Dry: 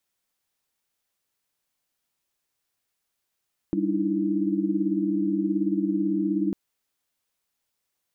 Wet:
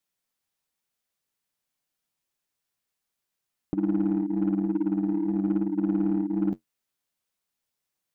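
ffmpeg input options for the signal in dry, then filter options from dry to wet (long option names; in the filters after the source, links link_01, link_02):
-f lavfi -i "aevalsrc='0.0422*(sin(2*PI*196*t)+sin(2*PI*293.66*t)+sin(2*PI*311.13*t)+sin(2*PI*329.63*t))':duration=2.8:sample_rate=44100"
-filter_complex "[0:a]equalizer=frequency=180:width_type=o:width=0.74:gain=3.5,flanger=delay=6.4:depth=7.1:regen=-51:speed=0.5:shape=sinusoidal,asplit=2[link_01][link_02];[link_02]acrusher=bits=3:mix=0:aa=0.5,volume=-12dB[link_03];[link_01][link_03]amix=inputs=2:normalize=0"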